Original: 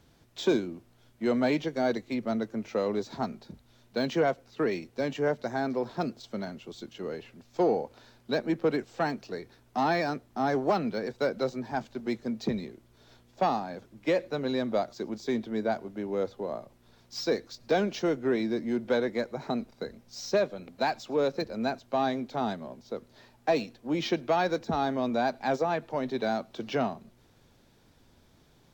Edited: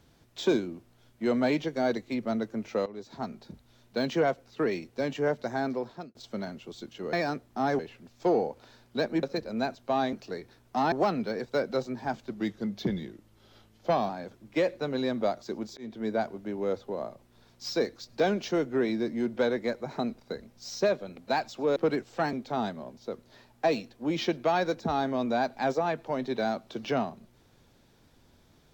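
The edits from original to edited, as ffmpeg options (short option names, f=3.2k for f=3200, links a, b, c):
-filter_complex "[0:a]asplit=13[a][b][c][d][e][f][g][h][i][j][k][l][m];[a]atrim=end=2.86,asetpts=PTS-STARTPTS,afade=t=out:st=2.856:d=0.004:c=hsin:silence=0.133352[n];[b]atrim=start=2.86:end=6.15,asetpts=PTS-STARTPTS,afade=t=in:d=0.61:silence=0.133352,afade=t=out:st=2.82:d=0.47[o];[c]atrim=start=6.15:end=7.132,asetpts=PTS-STARTPTS,afade=t=in:d=0.004:c=hsin[p];[d]atrim=start=9.928:end=10.592[q];[e]atrim=start=7.128:end=8.572[r];[f]atrim=start=21.268:end=22.172[s];[g]atrim=start=9.138:end=9.932[t];[h]atrim=start=10.588:end=11.974[u];[i]atrim=start=11.97:end=13.6,asetpts=PTS-STARTPTS,asetrate=40131,aresample=44100,atrim=end_sample=78992,asetpts=PTS-STARTPTS[v];[j]atrim=start=13.596:end=15.28,asetpts=PTS-STARTPTS,afade=t=out:st=1.68:d=0.004:c=hsin[w];[k]atrim=start=15.28:end=21.272,asetpts=PTS-STARTPTS,afade=t=in:d=0.38:c=qsin[x];[l]atrim=start=8.568:end=9.142[y];[m]atrim=start=22.168[z];[n][o][p]concat=n=3:v=0:a=1[aa];[aa][q]acrossfade=d=0.004:c1=hsin:c2=hsin[ab];[ab][r]acrossfade=d=0.004:c1=hsin:c2=hsin[ac];[ac][s]acrossfade=d=0.004:c1=hsin:c2=hsin[ad];[ad][t]acrossfade=d=0.004:c1=hsin:c2=hsin[ae];[ae][u]acrossfade=d=0.004:c1=hsin:c2=hsin[af];[af][v]acrossfade=d=0.004:c1=hsin:c2=hsin[ag];[w][x]concat=n=2:v=0:a=1[ah];[ag][ah]acrossfade=d=0.004:c1=hsin:c2=hsin[ai];[ai][y]acrossfade=d=0.004:c1=hsin:c2=hsin[aj];[aj][z]acrossfade=d=0.004:c1=hsin:c2=hsin"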